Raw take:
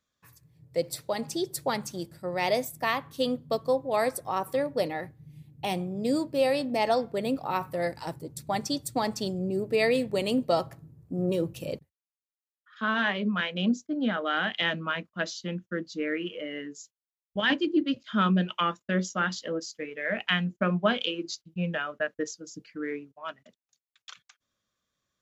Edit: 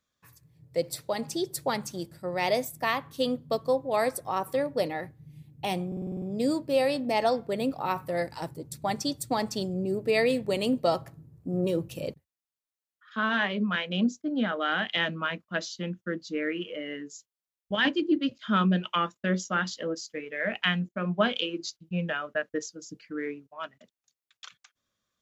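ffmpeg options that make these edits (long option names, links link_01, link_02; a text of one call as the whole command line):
ffmpeg -i in.wav -filter_complex "[0:a]asplit=9[link_01][link_02][link_03][link_04][link_05][link_06][link_07][link_08][link_09];[link_01]atrim=end=5.922[link_10];[link_02]atrim=start=5.868:end=5.922[link_11];[link_03]atrim=start=5.868:end=5.922[link_12];[link_04]atrim=start=5.868:end=5.922[link_13];[link_05]atrim=start=5.868:end=5.922[link_14];[link_06]atrim=start=5.868:end=5.922[link_15];[link_07]atrim=start=5.868:end=5.922[link_16];[link_08]atrim=start=5.868:end=20.54,asetpts=PTS-STARTPTS,afade=type=out:start_time=14.668:duration=0.004:curve=hsin:silence=0.211349[link_17];[link_09]atrim=start=20.54,asetpts=PTS-STARTPTS,afade=type=in:duration=0.28:silence=0.211349[link_18];[link_10][link_11]acrossfade=duration=0.004:curve1=hsin:curve2=hsin[link_19];[link_19][link_12]acrossfade=duration=0.004:curve1=hsin:curve2=hsin[link_20];[link_20][link_13]acrossfade=duration=0.004:curve1=hsin:curve2=hsin[link_21];[link_21][link_14]acrossfade=duration=0.004:curve1=hsin:curve2=hsin[link_22];[link_22][link_15]acrossfade=duration=0.004:curve1=hsin:curve2=hsin[link_23];[link_23][link_16]acrossfade=duration=0.004:curve1=hsin:curve2=hsin[link_24];[link_17][link_18]concat=n=2:v=0:a=1[link_25];[link_24][link_25]acrossfade=duration=0.004:curve1=hsin:curve2=hsin" out.wav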